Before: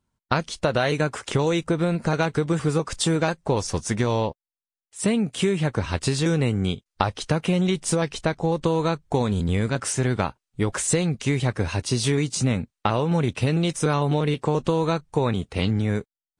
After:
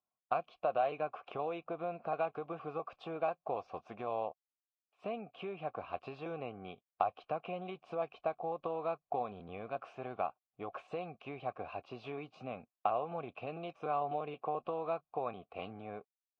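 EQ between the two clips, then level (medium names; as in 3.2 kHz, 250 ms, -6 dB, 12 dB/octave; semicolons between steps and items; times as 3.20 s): vowel filter a; distance through air 320 m; 0.0 dB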